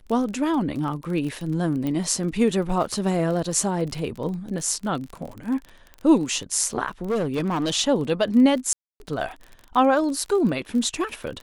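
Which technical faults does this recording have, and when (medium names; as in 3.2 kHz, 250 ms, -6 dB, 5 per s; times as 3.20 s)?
crackle 32 per s -30 dBFS
1.87 s: pop -16 dBFS
5.29 s: dropout 4.1 ms
7.09–7.74 s: clipped -20 dBFS
8.73–9.00 s: dropout 271 ms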